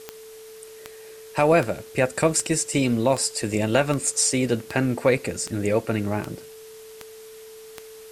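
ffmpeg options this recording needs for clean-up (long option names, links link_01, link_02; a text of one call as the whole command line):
ffmpeg -i in.wav -af "adeclick=threshold=4,bandreject=frequency=440:width=30,afwtdn=0.004" out.wav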